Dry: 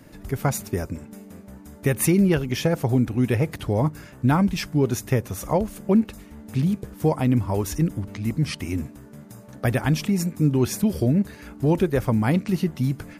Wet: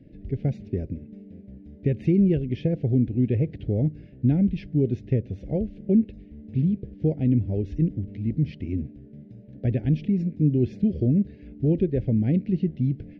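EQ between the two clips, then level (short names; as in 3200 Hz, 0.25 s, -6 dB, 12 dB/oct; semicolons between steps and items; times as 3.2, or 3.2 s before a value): Butterworth band-stop 1100 Hz, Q 0.54; air absorption 260 m; tape spacing loss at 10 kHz 27 dB; 0.0 dB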